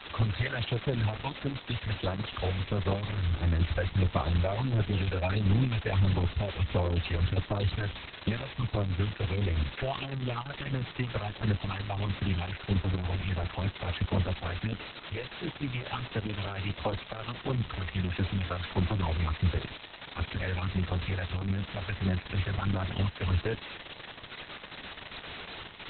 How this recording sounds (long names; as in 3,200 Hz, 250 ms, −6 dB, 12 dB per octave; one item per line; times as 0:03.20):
phaser sweep stages 6, 1.5 Hz, lowest notch 240–4,000 Hz
a quantiser's noise floor 6 bits, dither triangular
Opus